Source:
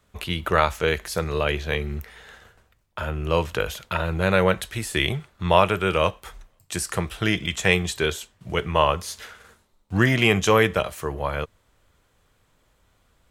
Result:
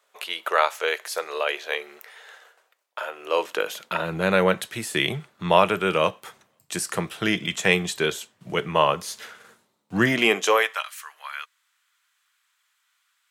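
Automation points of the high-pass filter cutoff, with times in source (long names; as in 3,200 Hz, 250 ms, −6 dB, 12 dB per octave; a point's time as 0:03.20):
high-pass filter 24 dB per octave
0:03.17 480 Hz
0:04.15 140 Hz
0:10.03 140 Hz
0:10.55 440 Hz
0:10.88 1,300 Hz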